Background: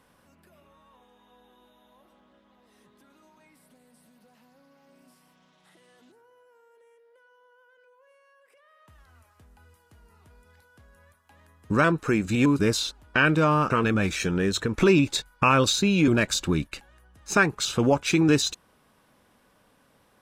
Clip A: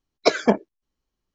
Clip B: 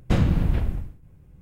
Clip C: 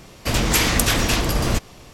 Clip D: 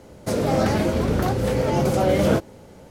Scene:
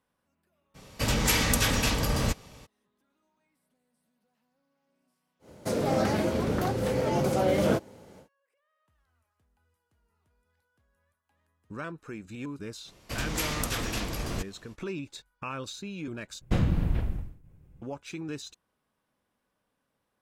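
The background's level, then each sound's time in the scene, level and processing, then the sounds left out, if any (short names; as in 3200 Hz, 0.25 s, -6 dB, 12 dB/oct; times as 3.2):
background -17 dB
0.74 add C -5 dB, fades 0.02 s + notch comb 350 Hz
5.39 add D -5 dB, fades 0.10 s + HPF 110 Hz 6 dB/oct
12.84 add C -13 dB, fades 0.05 s
16.41 replace with B -5 dB
not used: A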